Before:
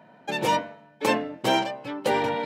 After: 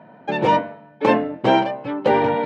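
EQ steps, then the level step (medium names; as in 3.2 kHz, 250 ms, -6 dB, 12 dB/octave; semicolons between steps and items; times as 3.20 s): low-pass 3.7 kHz 12 dB/octave; treble shelf 2.1 kHz -10 dB; +8.0 dB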